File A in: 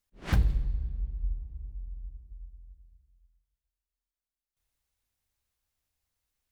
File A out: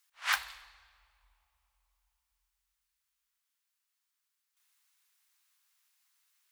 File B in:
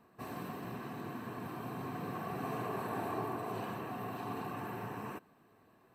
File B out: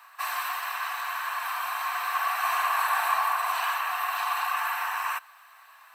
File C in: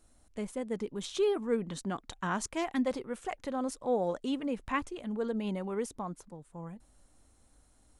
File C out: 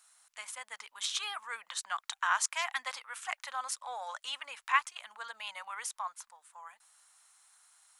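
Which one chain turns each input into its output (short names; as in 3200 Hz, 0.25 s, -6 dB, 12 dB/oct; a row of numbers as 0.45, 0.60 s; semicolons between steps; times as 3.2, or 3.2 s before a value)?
inverse Chebyshev high-pass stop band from 390 Hz, stop band 50 dB; normalise peaks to -12 dBFS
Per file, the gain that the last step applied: +10.0, +19.5, +7.5 dB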